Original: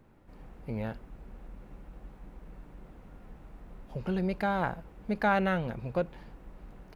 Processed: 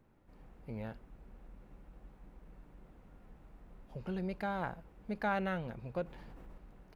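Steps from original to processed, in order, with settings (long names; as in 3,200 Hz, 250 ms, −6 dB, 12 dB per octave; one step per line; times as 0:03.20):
0:06.04–0:06.58: envelope flattener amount 70%
level −7.5 dB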